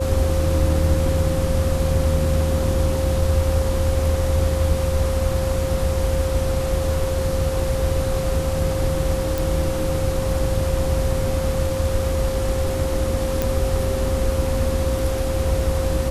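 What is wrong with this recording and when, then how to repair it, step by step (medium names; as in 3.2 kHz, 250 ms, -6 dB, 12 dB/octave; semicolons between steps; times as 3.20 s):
whine 530 Hz -24 dBFS
9.38 s: pop
13.42 s: pop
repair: de-click; band-stop 530 Hz, Q 30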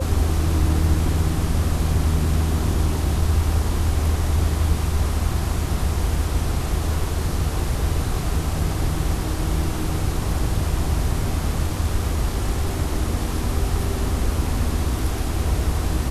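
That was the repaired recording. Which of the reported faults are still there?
nothing left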